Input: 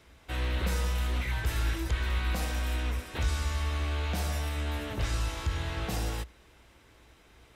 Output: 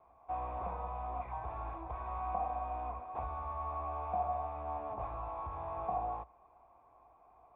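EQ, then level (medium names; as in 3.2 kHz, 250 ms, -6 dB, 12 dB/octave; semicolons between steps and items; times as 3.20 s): cascade formant filter a; +12.0 dB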